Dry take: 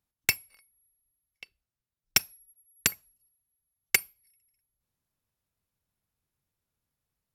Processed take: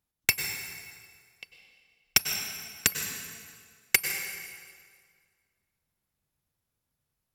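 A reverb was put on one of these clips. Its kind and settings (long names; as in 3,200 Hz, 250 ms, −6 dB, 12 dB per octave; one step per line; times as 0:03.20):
dense smooth reverb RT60 1.9 s, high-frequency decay 0.85×, pre-delay 85 ms, DRR 4.5 dB
level +1 dB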